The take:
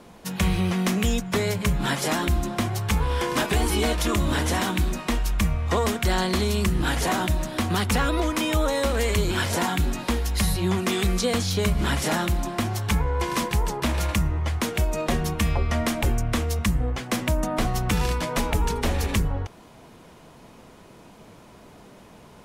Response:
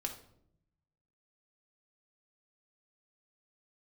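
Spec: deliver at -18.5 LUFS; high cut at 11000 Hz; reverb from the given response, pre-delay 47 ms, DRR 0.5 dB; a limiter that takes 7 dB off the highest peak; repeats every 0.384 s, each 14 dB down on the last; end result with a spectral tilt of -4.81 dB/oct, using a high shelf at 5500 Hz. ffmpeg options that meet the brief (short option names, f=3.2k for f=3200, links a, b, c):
-filter_complex "[0:a]lowpass=11k,highshelf=f=5.5k:g=4,alimiter=limit=-18dB:level=0:latency=1,aecho=1:1:384|768:0.2|0.0399,asplit=2[a][b];[1:a]atrim=start_sample=2205,adelay=47[c];[b][c]afir=irnorm=-1:irlink=0,volume=-0.5dB[d];[a][d]amix=inputs=2:normalize=0,volume=5.5dB"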